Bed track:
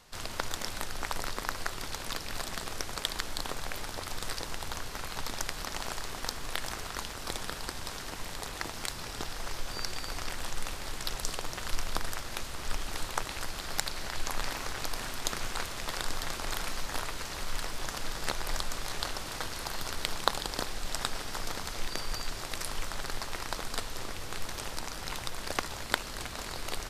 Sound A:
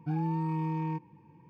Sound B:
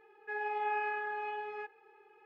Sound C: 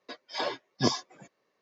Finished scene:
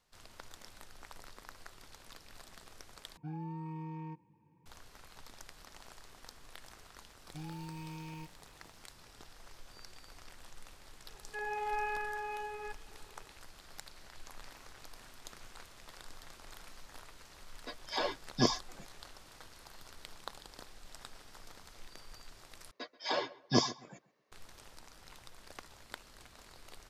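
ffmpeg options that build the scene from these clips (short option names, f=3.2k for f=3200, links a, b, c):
-filter_complex "[1:a]asplit=2[a][b];[3:a]asplit=2[c][d];[0:a]volume=-17.5dB[e];[b]aexciter=amount=9.6:drive=6:freq=2.5k[f];[d]asplit=2[g][h];[h]adelay=133,lowpass=f=2.5k:p=1,volume=-19dB,asplit=2[i][j];[j]adelay=133,lowpass=f=2.5k:p=1,volume=0.3,asplit=2[k][l];[l]adelay=133,lowpass=f=2.5k:p=1,volume=0.3[m];[g][i][k][m]amix=inputs=4:normalize=0[n];[e]asplit=3[o][p][q];[o]atrim=end=3.174[r];[a]atrim=end=1.49,asetpts=PTS-STARTPTS,volume=-11dB[s];[p]atrim=start=4.656:end=22.714[t];[n]atrim=end=1.61,asetpts=PTS-STARTPTS,volume=-2dB[u];[q]atrim=start=24.316[v];[f]atrim=end=1.49,asetpts=PTS-STARTPTS,volume=-14dB,afade=t=in:d=0.004:c=hsin,afade=t=out:st=1.486:d=0.004:c=hsin,adelay=7280[w];[2:a]atrim=end=2.25,asetpts=PTS-STARTPTS,volume=-2dB,afade=t=in:d=0.004:c=hsin,afade=t=out:st=2.246:d=0.004:c=hsin,adelay=487746S[x];[c]atrim=end=1.61,asetpts=PTS-STARTPTS,volume=-2.5dB,afade=t=in:d=0.004:c=hsin,afade=t=out:st=1.606:d=0.004:c=hsin,adelay=17580[y];[r][s]acrossfade=d=0.004:c1=hsin:c2=hsin[z];[z][t]acrossfade=d=0.004:c1=hsin:c2=hsin[aa];[aa][u]acrossfade=d=0.004:c1=hsin:c2=hsin[ab];[ab][v]acrossfade=d=0.004:c1=hsin:c2=hsin[ac];[ac][w][x][y]amix=inputs=4:normalize=0"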